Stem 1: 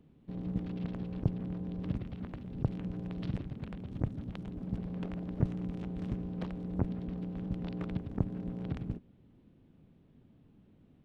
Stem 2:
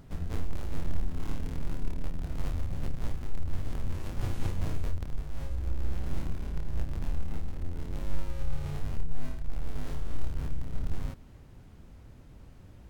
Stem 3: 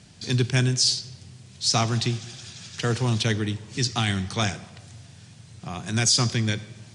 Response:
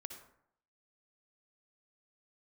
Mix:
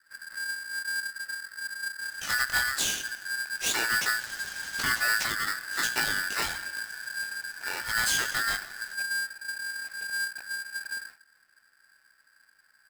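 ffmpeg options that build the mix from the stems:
-filter_complex "[0:a]lowshelf=f=550:t=q:w=3:g=-13.5,adelay=2200,volume=0.299[s0];[1:a]aecho=1:1:3.9:0.51,adynamicequalizer=threshold=0.00112:dfrequency=830:dqfactor=0.95:tfrequency=830:tqfactor=0.95:attack=5:release=100:ratio=0.375:range=2.5:mode=cutabove:tftype=bell,volume=0.141,asplit=2[s1][s2];[s2]volume=0.447[s3];[2:a]acompressor=threshold=0.0631:ratio=6,flanger=delay=16.5:depth=6.7:speed=1,adelay=2000,volume=1.26[s4];[3:a]atrim=start_sample=2205[s5];[s3][s5]afir=irnorm=-1:irlink=0[s6];[s0][s1][s4][s6]amix=inputs=4:normalize=0,aeval=exprs='val(0)*sgn(sin(2*PI*1600*n/s))':c=same"

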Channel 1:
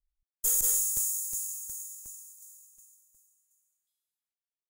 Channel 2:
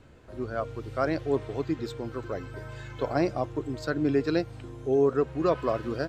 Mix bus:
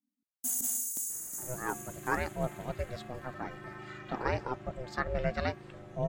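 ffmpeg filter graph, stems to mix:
-filter_complex "[0:a]volume=0.668[s0];[1:a]equalizer=f=1700:w=1:g=9,adelay=1100,volume=0.596[s1];[s0][s1]amix=inputs=2:normalize=0,aeval=exprs='val(0)*sin(2*PI*250*n/s)':c=same"

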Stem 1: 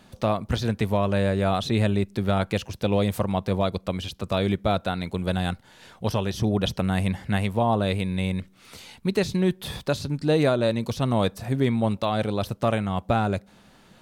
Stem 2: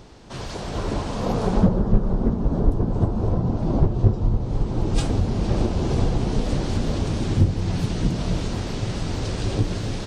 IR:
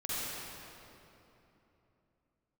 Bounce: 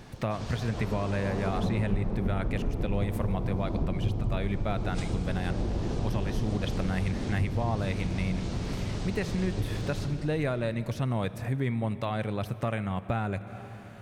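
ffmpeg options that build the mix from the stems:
-filter_complex "[0:a]equalizer=f=125:t=o:w=1:g=6,equalizer=f=2000:t=o:w=1:g=8,equalizer=f=4000:t=o:w=1:g=-5,volume=0.75,asplit=2[s0][s1];[s1]volume=0.0944[s2];[1:a]volume=0.473,asplit=2[s3][s4];[s4]volume=0.562[s5];[2:a]atrim=start_sample=2205[s6];[s2][s5]amix=inputs=2:normalize=0[s7];[s7][s6]afir=irnorm=-1:irlink=0[s8];[s0][s3][s8]amix=inputs=3:normalize=0,acompressor=threshold=0.0251:ratio=2"

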